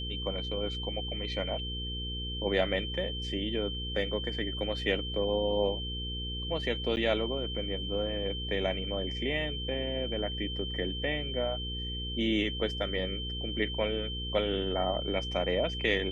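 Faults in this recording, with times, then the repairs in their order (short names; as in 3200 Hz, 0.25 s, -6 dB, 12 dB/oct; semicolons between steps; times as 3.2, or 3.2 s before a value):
hum 60 Hz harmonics 8 -38 dBFS
tone 3100 Hz -37 dBFS
6.96–6.97 gap 9.7 ms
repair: de-hum 60 Hz, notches 8; notch 3100 Hz, Q 30; interpolate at 6.96, 9.7 ms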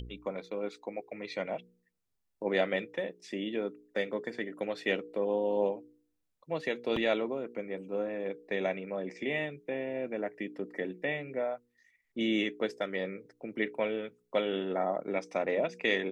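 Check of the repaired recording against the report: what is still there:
none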